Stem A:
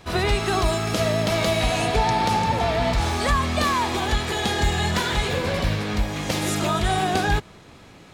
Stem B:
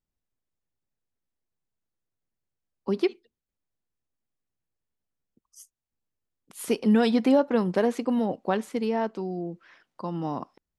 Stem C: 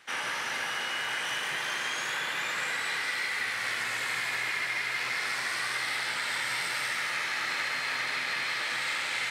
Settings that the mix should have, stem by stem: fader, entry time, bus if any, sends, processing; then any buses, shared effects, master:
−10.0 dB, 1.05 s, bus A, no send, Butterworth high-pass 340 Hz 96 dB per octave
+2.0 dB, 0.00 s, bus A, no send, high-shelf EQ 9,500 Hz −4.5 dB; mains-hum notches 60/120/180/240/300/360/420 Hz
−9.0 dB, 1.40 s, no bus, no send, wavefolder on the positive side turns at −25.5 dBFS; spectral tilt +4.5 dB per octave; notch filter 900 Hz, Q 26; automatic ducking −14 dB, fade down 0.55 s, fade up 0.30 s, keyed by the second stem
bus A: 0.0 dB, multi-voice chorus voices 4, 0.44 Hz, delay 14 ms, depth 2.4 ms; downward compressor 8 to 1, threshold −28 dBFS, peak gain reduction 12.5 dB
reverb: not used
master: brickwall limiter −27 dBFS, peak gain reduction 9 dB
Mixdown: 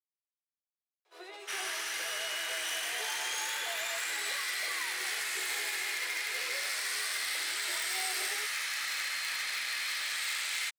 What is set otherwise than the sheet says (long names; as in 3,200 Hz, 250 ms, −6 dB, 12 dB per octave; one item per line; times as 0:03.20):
stem A −10.0 dB → −19.5 dB
stem B: muted
master: missing brickwall limiter −27 dBFS, peak gain reduction 9 dB